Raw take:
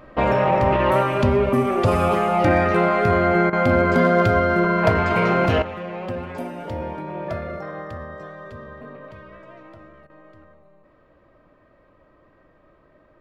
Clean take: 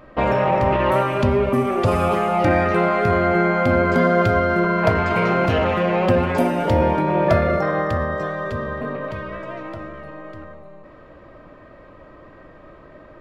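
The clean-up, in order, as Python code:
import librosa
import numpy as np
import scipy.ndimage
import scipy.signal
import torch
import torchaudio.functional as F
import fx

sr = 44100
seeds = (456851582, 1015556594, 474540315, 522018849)

y = fx.fix_declip(x, sr, threshold_db=-7.5)
y = fx.fix_interpolate(y, sr, at_s=(3.5, 10.07), length_ms=27.0)
y = fx.gain(y, sr, db=fx.steps((0.0, 0.0), (5.62, 12.0)))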